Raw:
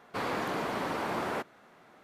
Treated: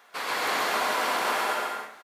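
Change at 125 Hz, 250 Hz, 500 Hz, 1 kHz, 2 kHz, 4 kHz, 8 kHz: under -10 dB, -4.0 dB, +3.5 dB, +8.0 dB, +10.0 dB, +12.5 dB, +14.5 dB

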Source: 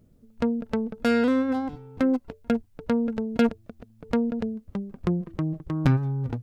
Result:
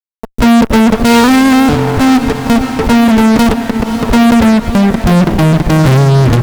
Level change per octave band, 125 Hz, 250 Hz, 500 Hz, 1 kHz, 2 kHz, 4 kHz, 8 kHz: +18.0 dB, +18.0 dB, +15.0 dB, +22.5 dB, +20.5 dB, +24.5 dB, n/a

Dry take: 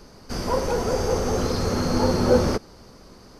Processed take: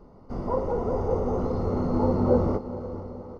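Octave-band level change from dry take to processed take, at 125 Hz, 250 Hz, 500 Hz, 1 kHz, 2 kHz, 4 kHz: -1.5 dB, -1.5 dB, -3.0 dB, -4.0 dB, -16.0 dB, under -20 dB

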